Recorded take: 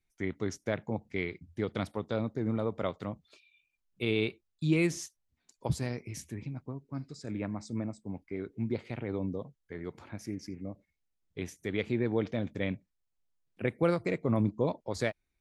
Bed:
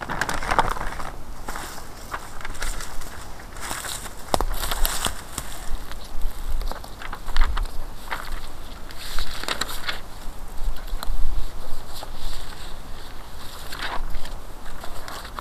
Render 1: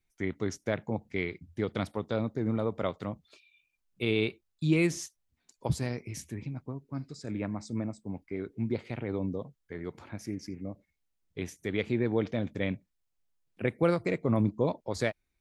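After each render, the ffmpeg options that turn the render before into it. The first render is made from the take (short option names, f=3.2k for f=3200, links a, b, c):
-af "volume=1.5dB"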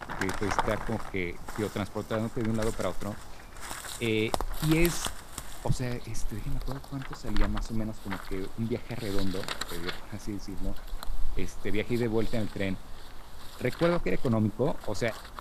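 -filter_complex "[1:a]volume=-8.5dB[a];[0:a][a]amix=inputs=2:normalize=0"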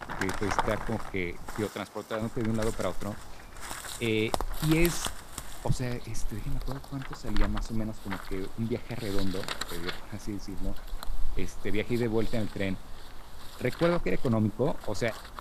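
-filter_complex "[0:a]asettb=1/sr,asplit=3[a][b][c];[a]atrim=end=1.664[d];[b]atrim=start=1.66:end=2.22,asetpts=PTS-STARTPTS,afade=t=in:d=0.004:c=qsin,afade=t=out:st=0.556:d=0.004:c=qsin,highpass=f=380:p=1[e];[c]atrim=start=2.216[f];[d][e]acrossfade=d=0.004:c1=hsin:c2=qsin[g];[g][f]acrossfade=d=0.004:c1=qsin:c2=hsin"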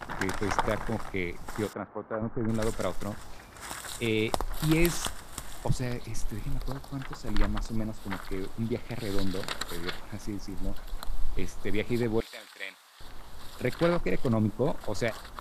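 -filter_complex "[0:a]asettb=1/sr,asplit=3[a][b][c];[a]atrim=end=1.734[d];[b]atrim=start=1.73:end=2.49,asetpts=PTS-STARTPTS,afade=t=in:d=0.004:c=qsin,afade=t=out:st=0.756:d=0.004:c=qsin,lowpass=f=1.6k:w=0.5412,lowpass=f=1.6k:w=1.3066[e];[c]atrim=start=2.486[f];[d][e]acrossfade=d=0.004:c1=hsin:c2=qsin[g];[g][f]acrossfade=d=0.004:c1=qsin:c2=hsin,asettb=1/sr,asplit=3[h][i][j];[h]atrim=end=3.374[k];[i]atrim=start=3.37:end=3.89,asetpts=PTS-STARTPTS,afade=t=in:d=0.004:c=qsin,afade=t=out:st=0.516:d=0.004:c=qsin,highpass=51[l];[j]atrim=start=3.886[m];[k][l]acrossfade=d=0.004:c1=hsin:c2=qsin[n];[n][m]acrossfade=d=0.004:c1=qsin:c2=hsin,asettb=1/sr,asplit=3[o][p][q];[o]atrim=end=12.204[r];[p]atrim=start=12.2:end=13.01,asetpts=PTS-STARTPTS,afade=t=in:d=0.004:c=qsin,afade=t=out:st=0.806:d=0.004:c=qsin,highpass=1.2k[s];[q]atrim=start=13.006[t];[r][s]acrossfade=d=0.004:c1=hsin:c2=qsin[u];[u][t]acrossfade=d=0.004:c1=qsin:c2=hsin"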